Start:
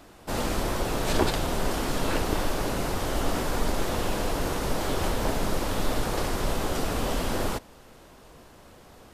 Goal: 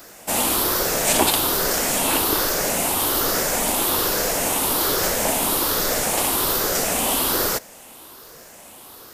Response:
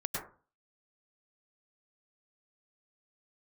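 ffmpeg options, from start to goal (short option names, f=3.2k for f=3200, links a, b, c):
-af "afftfilt=real='re*pow(10,6/40*sin(2*PI*(0.57*log(max(b,1)*sr/1024/100)/log(2)-(1.2)*(pts-256)/sr)))':imag='im*pow(10,6/40*sin(2*PI*(0.57*log(max(b,1)*sr/1024/100)/log(2)-(1.2)*(pts-256)/sr)))':win_size=1024:overlap=0.75,aemphasis=mode=production:type=bsi,volume=6dB"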